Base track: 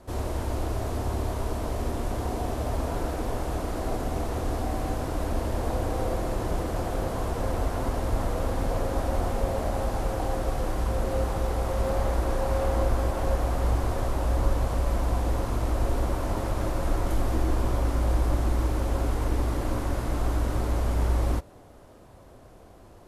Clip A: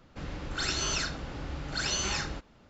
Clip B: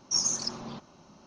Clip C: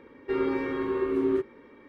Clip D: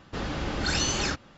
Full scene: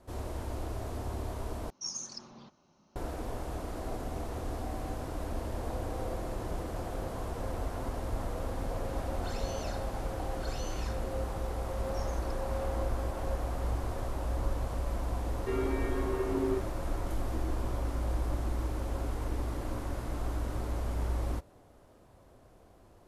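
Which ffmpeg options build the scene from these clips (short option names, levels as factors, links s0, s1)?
-filter_complex "[2:a]asplit=2[s0][s1];[0:a]volume=0.398[s2];[1:a]acompressor=threshold=0.0178:ratio=6:attack=3.2:release=140:knee=1:detection=peak[s3];[s1]lowpass=2600[s4];[s2]asplit=2[s5][s6];[s5]atrim=end=1.704[s7];[s0]atrim=end=1.26,asetpts=PTS-STARTPTS,volume=0.266[s8];[s6]atrim=start=2.956[s9];[s3]atrim=end=2.69,asetpts=PTS-STARTPTS,volume=0.398,afade=t=in:d=0.004:c=hsin,afade=t=out:st=2.686:d=0.004:c=hsin,adelay=8680[s10];[s4]atrim=end=1.26,asetpts=PTS-STARTPTS,volume=0.251,afade=t=in:d=0.004:c=hsin,afade=t=out:st=1.256:d=0.004:c=hsin,adelay=11830[s11];[3:a]atrim=end=1.88,asetpts=PTS-STARTPTS,volume=0.501,afade=t=in:d=0.004:c=hsin,afade=t=out:st=1.876:d=0.004:c=hsin,adelay=15180[s12];[s7][s8]acrossfade=d=0.004:c1=hsin:c2=hsin[s13];[s13][s9]acrossfade=d=0.004:c1=hsin:c2=hsin[s14];[s14][s10][s11][s12]amix=inputs=4:normalize=0"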